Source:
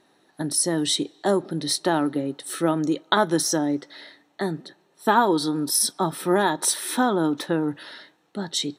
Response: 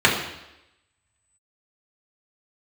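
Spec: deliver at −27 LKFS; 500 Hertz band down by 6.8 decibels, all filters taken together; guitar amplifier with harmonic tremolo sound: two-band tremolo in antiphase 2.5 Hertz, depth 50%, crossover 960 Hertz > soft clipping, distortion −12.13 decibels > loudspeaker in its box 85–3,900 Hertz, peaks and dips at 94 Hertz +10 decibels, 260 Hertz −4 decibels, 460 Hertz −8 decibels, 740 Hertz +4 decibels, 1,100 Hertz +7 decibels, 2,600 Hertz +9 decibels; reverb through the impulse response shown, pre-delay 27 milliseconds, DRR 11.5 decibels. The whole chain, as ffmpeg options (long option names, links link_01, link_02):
-filter_complex "[0:a]equalizer=frequency=500:width_type=o:gain=-8,asplit=2[link_01][link_02];[1:a]atrim=start_sample=2205,adelay=27[link_03];[link_02][link_03]afir=irnorm=-1:irlink=0,volume=-33.5dB[link_04];[link_01][link_04]amix=inputs=2:normalize=0,acrossover=split=960[link_05][link_06];[link_05]aeval=exprs='val(0)*(1-0.5/2+0.5/2*cos(2*PI*2.5*n/s))':channel_layout=same[link_07];[link_06]aeval=exprs='val(0)*(1-0.5/2-0.5/2*cos(2*PI*2.5*n/s))':channel_layout=same[link_08];[link_07][link_08]amix=inputs=2:normalize=0,asoftclip=threshold=-21dB,highpass=85,equalizer=frequency=94:width_type=q:width=4:gain=10,equalizer=frequency=260:width_type=q:width=4:gain=-4,equalizer=frequency=460:width_type=q:width=4:gain=-8,equalizer=frequency=740:width_type=q:width=4:gain=4,equalizer=frequency=1100:width_type=q:width=4:gain=7,equalizer=frequency=2600:width_type=q:width=4:gain=9,lowpass=frequency=3900:width=0.5412,lowpass=frequency=3900:width=1.3066,volume=4dB"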